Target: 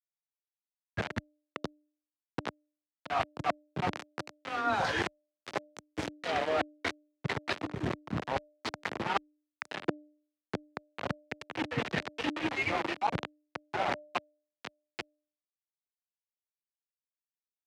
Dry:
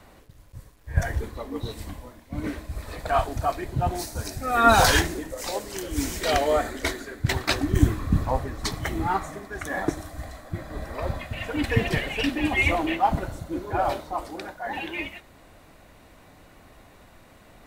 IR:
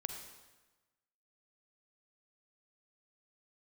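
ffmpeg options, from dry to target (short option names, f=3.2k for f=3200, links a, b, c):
-af "aeval=exprs='val(0)*gte(abs(val(0)),0.0841)':c=same,areverse,acompressor=threshold=-30dB:ratio=12,areverse,afreqshift=18,highpass=150,lowpass=3.2k,bandreject=f=299.8:t=h:w=4,bandreject=f=599.6:t=h:w=4,volume=4.5dB"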